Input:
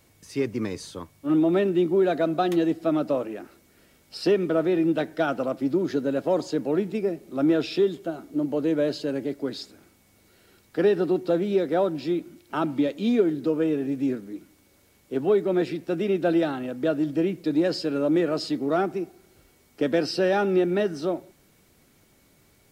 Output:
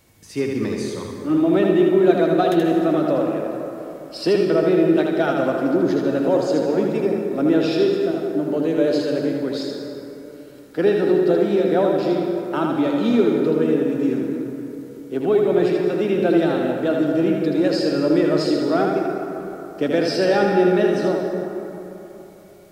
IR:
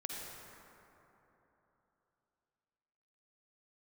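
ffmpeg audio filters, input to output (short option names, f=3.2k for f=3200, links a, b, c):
-filter_complex "[0:a]asplit=2[a][b];[1:a]atrim=start_sample=2205,adelay=79[c];[b][c]afir=irnorm=-1:irlink=0,volume=-0.5dB[d];[a][d]amix=inputs=2:normalize=0,volume=2.5dB"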